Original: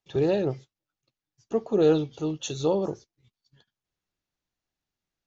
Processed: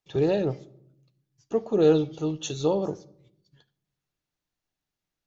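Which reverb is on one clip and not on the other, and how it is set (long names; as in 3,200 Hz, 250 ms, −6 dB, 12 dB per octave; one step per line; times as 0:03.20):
rectangular room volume 1,900 cubic metres, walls furnished, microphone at 0.45 metres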